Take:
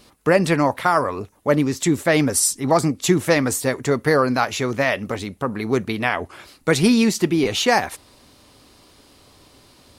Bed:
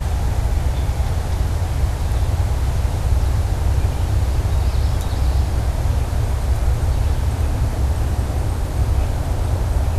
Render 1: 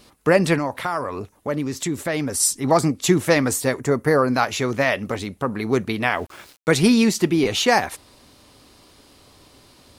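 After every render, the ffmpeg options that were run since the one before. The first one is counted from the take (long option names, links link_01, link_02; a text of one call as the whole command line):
ffmpeg -i in.wav -filter_complex "[0:a]asettb=1/sr,asplit=3[link_01][link_02][link_03];[link_01]atrim=end=0.584[link_04];[link_02]atrim=start=0.58:end=2.4,asetpts=PTS-STARTPTS,afade=type=in:duration=0.004:curve=qsin,afade=type=out:start_time=1.816:duration=0.004:curve=qsin,acompressor=threshold=-25dB:ratio=2:attack=3.2:release=140:knee=1:detection=peak[link_05];[link_03]atrim=start=2.396[link_06];[link_04][link_05]acrossfade=duration=0.004:curve1=hsin:curve2=qsin[link_07];[link_07][link_06]acrossfade=duration=0.004:curve1=qsin:curve2=hsin,asettb=1/sr,asplit=3[link_08][link_09][link_10];[link_08]atrim=end=3.804[link_11];[link_09]atrim=start=3.8:end=4.33,asetpts=PTS-STARTPTS,afade=type=in:duration=0.004:curve=qsin,afade=type=out:start_time=0.526:duration=0.004:curve=qsin,equalizer=frequency=3500:width_type=o:width=1.2:gain=-9.5[link_12];[link_10]atrim=start=4.326[link_13];[link_11][link_12]acrossfade=duration=0.004:curve1=hsin:curve2=qsin[link_14];[link_14][link_13]acrossfade=duration=0.004:curve1=qsin:curve2=hsin,asettb=1/sr,asplit=3[link_15][link_16][link_17];[link_15]atrim=end=6.034[link_18];[link_16]atrim=start=6.03:end=6.7,asetpts=PTS-STARTPTS,afade=type=in:duration=0.004:curve=qsin,afade=type=out:start_time=0.666:duration=0.004:curve=qsin,aeval=exprs='val(0)*gte(abs(val(0)),0.00708)':channel_layout=same[link_19];[link_17]atrim=start=6.696[link_20];[link_18][link_19]acrossfade=duration=0.004:curve1=hsin:curve2=qsin[link_21];[link_21][link_20]acrossfade=duration=0.004:curve1=qsin:curve2=hsin" out.wav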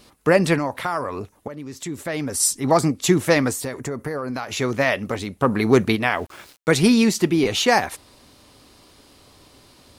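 ffmpeg -i in.wav -filter_complex "[0:a]asettb=1/sr,asplit=3[link_01][link_02][link_03];[link_01]atrim=end=3.504[link_04];[link_02]atrim=start=3.5:end=4.57,asetpts=PTS-STARTPTS,afade=type=in:duration=0.004:curve=qsin,afade=type=out:start_time=1.066:duration=0.004:curve=qsin,acompressor=threshold=-24dB:ratio=6:attack=3.2:release=140:knee=1:detection=peak[link_05];[link_03]atrim=start=4.566[link_06];[link_04][link_05]acrossfade=duration=0.004:curve1=hsin:curve2=qsin[link_07];[link_07][link_06]acrossfade=duration=0.004:curve1=qsin:curve2=hsin,asplit=3[link_08][link_09][link_10];[link_08]afade=type=out:start_time=5.41:duration=0.02[link_11];[link_09]acontrast=41,afade=type=in:start_time=5.41:duration=0.02,afade=type=out:start_time=5.95:duration=0.02[link_12];[link_10]afade=type=in:start_time=5.95:duration=0.02[link_13];[link_11][link_12][link_13]amix=inputs=3:normalize=0,asplit=2[link_14][link_15];[link_14]atrim=end=1.48,asetpts=PTS-STARTPTS,afade=type=out:start_time=1.476:duration=0.004:curve=hsin:silence=0.223872[link_16];[link_15]atrim=start=1.48,asetpts=PTS-STARTPTS,afade=type=in:duration=1:silence=0.223872[link_17];[link_16][link_17]concat=n=2:v=0:a=1" out.wav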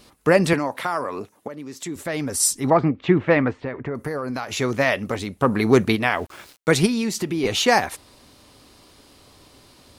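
ffmpeg -i in.wav -filter_complex "[0:a]asettb=1/sr,asplit=3[link_01][link_02][link_03];[link_01]atrim=end=0.534[link_04];[link_02]atrim=start=0.53:end=1.96,asetpts=PTS-STARTPTS,afade=type=in:duration=0.004:curve=qsin,afade=type=out:start_time=1.426:duration=0.004:curve=qsin,highpass=170[link_05];[link_03]atrim=start=1.956[link_06];[link_04][link_05]acrossfade=duration=0.004:curve1=hsin:curve2=qsin[link_07];[link_07][link_06]acrossfade=duration=0.004:curve1=qsin:curve2=hsin,asettb=1/sr,asplit=3[link_08][link_09][link_10];[link_08]atrim=end=2.704[link_11];[link_09]atrim=start=2.7:end=3.95,asetpts=PTS-STARTPTS,afade=type=in:duration=0.004:curve=qsin,afade=type=out:start_time=1.246:duration=0.004:curve=qsin,lowpass=frequency=2700:width=0.5412,lowpass=frequency=2700:width=1.3066[link_12];[link_10]atrim=start=3.946[link_13];[link_11][link_12]acrossfade=duration=0.004:curve1=hsin:curve2=qsin[link_14];[link_14][link_13]acrossfade=duration=0.004:curve1=qsin:curve2=hsin,asplit=3[link_15][link_16][link_17];[link_15]afade=type=out:start_time=6.85:duration=0.02[link_18];[link_16]acompressor=threshold=-22dB:ratio=3:attack=3.2:release=140:knee=1:detection=peak,afade=type=in:start_time=6.85:duration=0.02,afade=type=out:start_time=7.43:duration=0.02[link_19];[link_17]afade=type=in:start_time=7.43:duration=0.02[link_20];[link_18][link_19][link_20]amix=inputs=3:normalize=0" out.wav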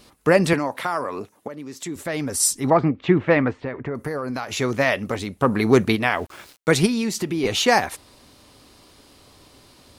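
ffmpeg -i in.wav -af anull out.wav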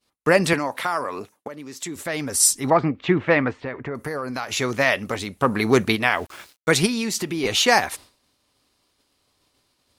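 ffmpeg -i in.wav -af "agate=range=-33dB:threshold=-39dB:ratio=3:detection=peak,tiltshelf=frequency=820:gain=-3" out.wav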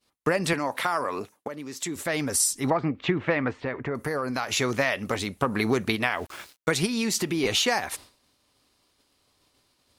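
ffmpeg -i in.wav -af "acompressor=threshold=-20dB:ratio=12" out.wav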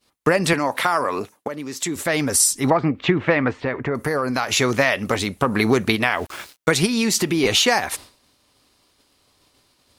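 ffmpeg -i in.wav -af "volume=6.5dB,alimiter=limit=-3dB:level=0:latency=1" out.wav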